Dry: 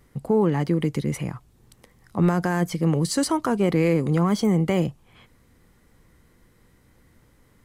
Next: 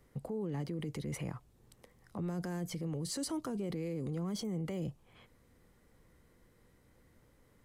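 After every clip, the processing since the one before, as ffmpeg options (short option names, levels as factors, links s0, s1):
-filter_complex "[0:a]equalizer=f=530:t=o:w=0.95:g=4.5,acrossover=split=420|3000[s0][s1][s2];[s1]acompressor=threshold=0.0251:ratio=6[s3];[s0][s3][s2]amix=inputs=3:normalize=0,alimiter=limit=0.0794:level=0:latency=1:release=14,volume=0.376"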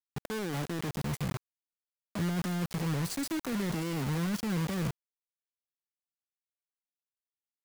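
-filter_complex "[0:a]acrossover=split=250|6400[s0][s1][s2];[s0]dynaudnorm=f=180:g=9:m=2.37[s3];[s3][s1][s2]amix=inputs=3:normalize=0,acrusher=bits=5:mix=0:aa=0.000001"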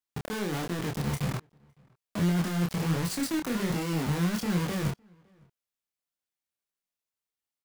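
-filter_complex "[0:a]flanger=delay=22.5:depth=6.4:speed=1.3,asplit=2[s0][s1];[s1]adelay=559.8,volume=0.0316,highshelf=f=4000:g=-12.6[s2];[s0][s2]amix=inputs=2:normalize=0,volume=2.11"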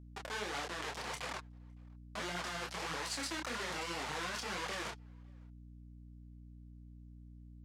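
-af "flanger=delay=0.1:depth=8.3:regen=27:speed=1.7:shape=triangular,highpass=660,lowpass=7400,aeval=exprs='val(0)+0.002*(sin(2*PI*60*n/s)+sin(2*PI*2*60*n/s)/2+sin(2*PI*3*60*n/s)/3+sin(2*PI*4*60*n/s)/4+sin(2*PI*5*60*n/s)/5)':c=same,volume=1.26"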